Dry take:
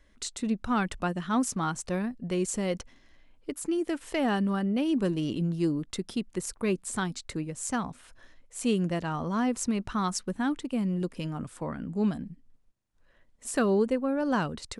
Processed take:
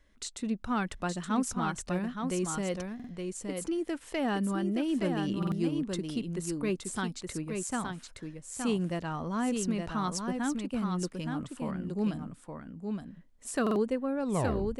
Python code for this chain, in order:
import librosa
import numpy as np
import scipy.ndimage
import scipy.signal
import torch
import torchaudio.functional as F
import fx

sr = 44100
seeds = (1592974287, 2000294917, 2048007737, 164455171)

y = fx.tape_stop_end(x, sr, length_s=0.61)
y = y + 10.0 ** (-5.0 / 20.0) * np.pad(y, (int(869 * sr / 1000.0), 0))[:len(y)]
y = fx.buffer_glitch(y, sr, at_s=(2.95, 5.38, 13.62), block=2048, repeats=2)
y = F.gain(torch.from_numpy(y), -3.5).numpy()